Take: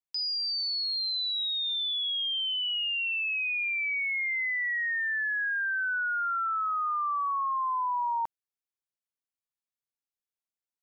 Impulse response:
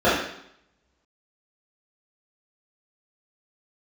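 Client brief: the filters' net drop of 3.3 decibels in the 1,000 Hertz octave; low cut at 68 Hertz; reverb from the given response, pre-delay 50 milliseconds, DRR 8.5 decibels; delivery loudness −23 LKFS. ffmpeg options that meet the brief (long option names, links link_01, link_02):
-filter_complex "[0:a]highpass=68,equalizer=frequency=1000:width_type=o:gain=-4,asplit=2[link_01][link_02];[1:a]atrim=start_sample=2205,adelay=50[link_03];[link_02][link_03]afir=irnorm=-1:irlink=0,volume=-31dB[link_04];[link_01][link_04]amix=inputs=2:normalize=0,volume=5.5dB"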